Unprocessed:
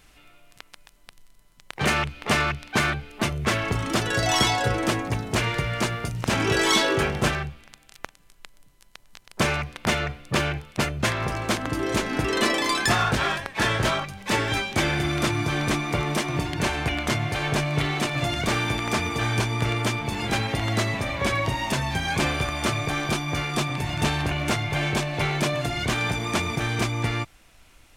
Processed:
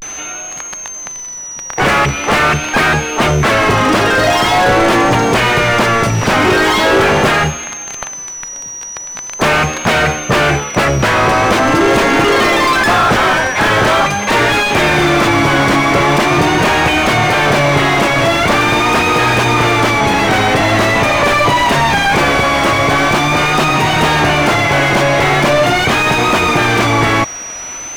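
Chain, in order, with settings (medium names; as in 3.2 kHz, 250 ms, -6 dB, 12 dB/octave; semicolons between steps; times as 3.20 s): whistle 6.1 kHz -44 dBFS; overdrive pedal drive 35 dB, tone 1.2 kHz, clips at -7.5 dBFS; vibrato 0.43 Hz 90 cents; trim +6.5 dB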